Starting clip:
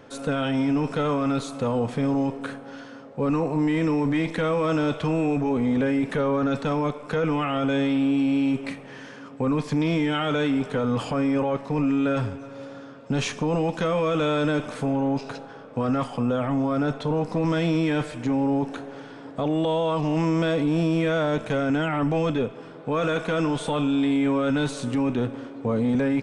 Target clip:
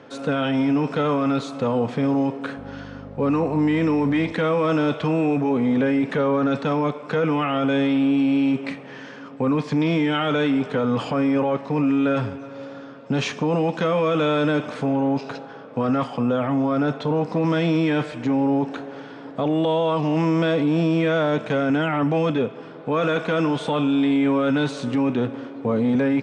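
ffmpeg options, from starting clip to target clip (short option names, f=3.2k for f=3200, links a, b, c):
-filter_complex "[0:a]asettb=1/sr,asplit=3[a][b][c];[a]atrim=end=2.574[d];[b]atrim=start=2.57:end=4.33,asetpts=PTS-STARTPTS,afade=t=in:d=0.004:c=qsin,afade=t=out:st=1.756:d=0.004:c=qsin,aeval=exprs='val(0)+0.02*(sin(2*PI*50*n/s)+sin(2*PI*2*50*n/s)/2+sin(2*PI*3*50*n/s)/3+sin(2*PI*4*50*n/s)/4+sin(2*PI*5*50*n/s)/5)':c=same[e];[c]atrim=start=4.326[f];[d][e]acrossfade=d=0.004:c1=hsin:c2=qsin[g];[g][f]acrossfade=d=0.004:c1=qsin:c2=hsin,highpass=120,lowpass=5.2k,volume=3dB"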